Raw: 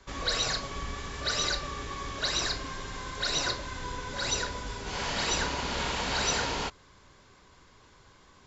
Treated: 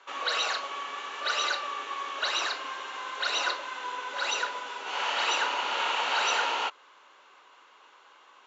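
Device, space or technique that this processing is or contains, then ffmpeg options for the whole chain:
phone speaker on a table: -af "highpass=f=380:w=0.5412,highpass=f=380:w=1.3066,equalizer=f=400:t=q:w=4:g=-4,equalizer=f=870:t=q:w=4:g=6,equalizer=f=1.3k:t=q:w=4:g=8,equalizer=f=2.8k:t=q:w=4:g=9,equalizer=f=5k:t=q:w=4:g=-9,lowpass=f=6.4k:w=0.5412,lowpass=f=6.4k:w=1.3066"

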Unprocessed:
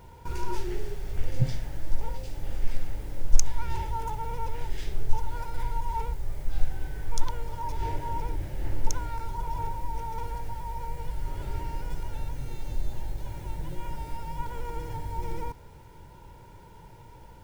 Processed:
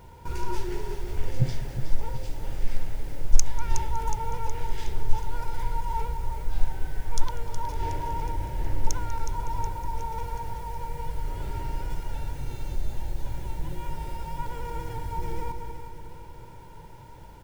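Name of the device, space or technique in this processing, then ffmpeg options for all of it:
ducked delay: -filter_complex "[0:a]aecho=1:1:367|734|1101|1468|1835|2202:0.335|0.178|0.0941|0.0499|0.0264|0.014,asplit=3[a][b][c];[b]adelay=194,volume=-8dB[d];[c]apad=whole_len=874724[e];[d][e]sidechaincompress=threshold=-27dB:ratio=8:attack=16:release=673[f];[a][f]amix=inputs=2:normalize=0,volume=1dB"

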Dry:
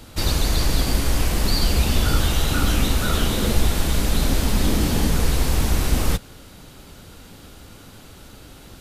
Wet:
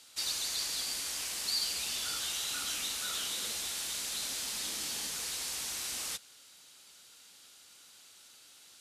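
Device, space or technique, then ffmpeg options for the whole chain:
piezo pickup straight into a mixer: -af "lowpass=7.8k,aderivative,volume=-1.5dB"

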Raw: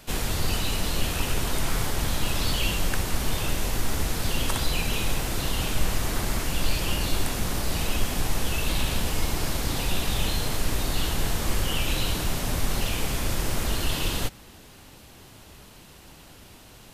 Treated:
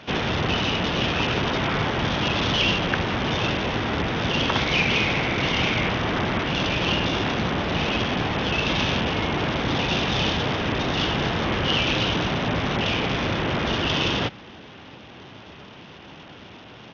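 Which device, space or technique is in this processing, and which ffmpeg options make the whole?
Bluetooth headset: -filter_complex "[0:a]asettb=1/sr,asplit=3[a][b][c];[a]atrim=end=4.584[d];[b]atrim=start=4.58:end=5.89,asetpts=PTS-STARTPTS,afade=t=in:d=0.004:c=qsin,afade=t=out:st=1.306:d=0.004:c=qsin,equalizer=f=2.2k:w=6.1:g=10[e];[c]atrim=start=5.886[f];[d][e]acrossfade=d=0.004:c1=hsin:c2=qsin[g];[g][f]acrossfade=d=0.004:c1=qsin:c2=hsin,highpass=120,aresample=8000,aresample=44100,volume=8dB" -ar 48000 -c:a sbc -b:a 64k

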